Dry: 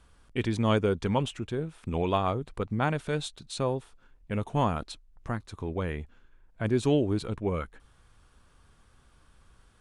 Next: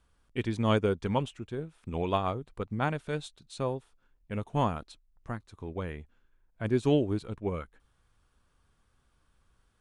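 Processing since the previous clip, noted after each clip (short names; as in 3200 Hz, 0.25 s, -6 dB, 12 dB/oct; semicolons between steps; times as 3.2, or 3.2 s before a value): upward expander 1.5:1, over -40 dBFS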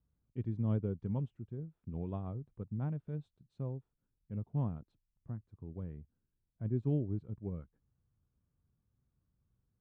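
band-pass 130 Hz, Q 1.3; gain -1.5 dB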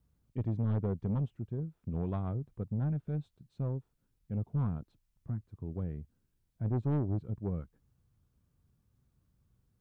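soft clip -33 dBFS, distortion -11 dB; gain +7 dB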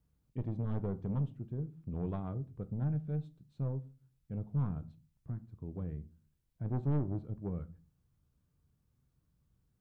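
shoebox room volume 140 m³, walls furnished, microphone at 0.46 m; gain -3 dB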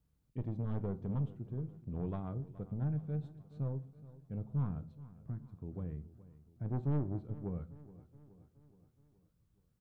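feedback echo 0.422 s, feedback 55%, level -17.5 dB; gain -1.5 dB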